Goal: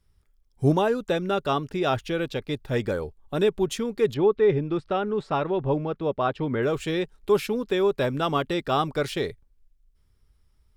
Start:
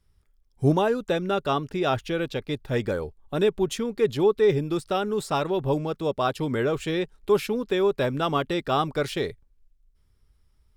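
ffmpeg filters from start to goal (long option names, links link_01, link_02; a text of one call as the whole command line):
ffmpeg -i in.wav -filter_complex "[0:a]asettb=1/sr,asplit=3[link_01][link_02][link_03];[link_01]atrim=end=4.144[link_04];[link_02]atrim=start=4.14:end=6.63,asetpts=PTS-STARTPTS,afade=type=in:duration=0.004:curve=qsin,afade=type=out:start_time=2.486:duration=0.004:curve=qsin,lowpass=2600[link_05];[link_03]atrim=start=6.626[link_06];[link_04][link_05]acrossfade=duration=0.004:curve1=hsin:curve2=qsin[link_07];[link_07][link_06]acrossfade=duration=0.004:curve1=qsin:curve2=hsin" out.wav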